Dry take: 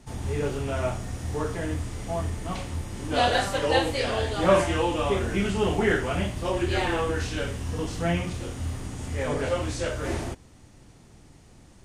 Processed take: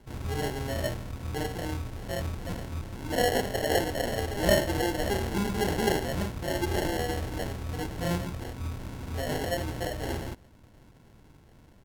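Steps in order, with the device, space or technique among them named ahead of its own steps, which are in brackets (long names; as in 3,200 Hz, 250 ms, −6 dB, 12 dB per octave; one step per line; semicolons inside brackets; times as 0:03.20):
crushed at another speed (tape speed factor 1.25×; decimation without filtering 29×; tape speed factor 0.8×)
level −3.5 dB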